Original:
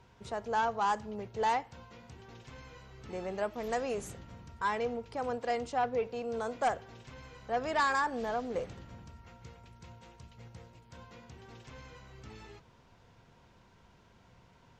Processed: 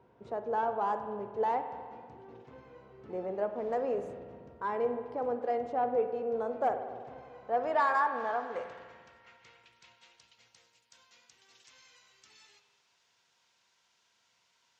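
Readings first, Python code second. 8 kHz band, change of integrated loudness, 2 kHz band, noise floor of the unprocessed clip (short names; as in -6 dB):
under -10 dB, +1.0 dB, -2.5 dB, -62 dBFS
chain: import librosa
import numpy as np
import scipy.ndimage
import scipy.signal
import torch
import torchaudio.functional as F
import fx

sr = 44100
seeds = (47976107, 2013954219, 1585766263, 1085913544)

y = fx.rev_spring(x, sr, rt60_s=1.8, pass_ms=(49,), chirp_ms=40, drr_db=8.0)
y = fx.filter_sweep_bandpass(y, sr, from_hz=440.0, to_hz=6300.0, start_s=7.09, end_s=10.82, q=0.9)
y = F.gain(torch.from_numpy(y), 3.0).numpy()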